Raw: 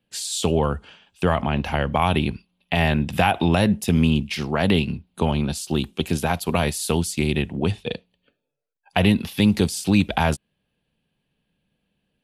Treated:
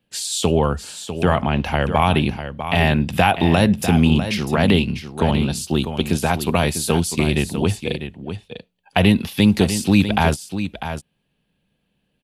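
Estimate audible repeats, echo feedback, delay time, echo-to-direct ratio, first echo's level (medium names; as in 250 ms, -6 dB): 1, no regular repeats, 648 ms, -10.0 dB, -10.0 dB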